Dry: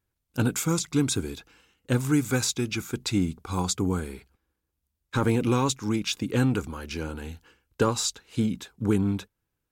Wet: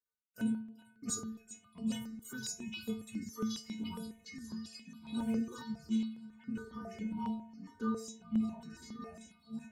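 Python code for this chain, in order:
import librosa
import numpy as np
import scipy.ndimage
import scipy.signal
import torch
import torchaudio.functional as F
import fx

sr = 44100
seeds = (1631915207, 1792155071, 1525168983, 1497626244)

y = fx.step_gate(x, sr, bpm=88, pattern='x.x...xxxxxx.xxx', floor_db=-60.0, edge_ms=4.5)
y = fx.echo_thinned(y, sr, ms=390, feedback_pct=68, hz=1100.0, wet_db=-12.5)
y = fx.room_shoebox(y, sr, seeds[0], volume_m3=3400.0, walls='furnished', distance_m=2.5)
y = fx.echo_pitch(y, sr, ms=607, semitones=-3, count=3, db_per_echo=-3.0)
y = fx.dynamic_eq(y, sr, hz=1500.0, q=0.98, threshold_db=-43.0, ratio=4.0, max_db=-5)
y = scipy.signal.sosfilt(scipy.signal.butter(2, 90.0, 'highpass', fs=sr, output='sos'), y)
y = fx.high_shelf(y, sr, hz=3000.0, db=-8.5, at=(6.24, 8.7))
y = fx.dereverb_blind(y, sr, rt60_s=1.7)
y = fx.stiff_resonator(y, sr, f0_hz=220.0, decay_s=0.58, stiffness=0.008)
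y = fx.phaser_held(y, sr, hz=7.3, low_hz=720.0, high_hz=6200.0)
y = F.gain(torch.from_numpy(y), 5.0).numpy()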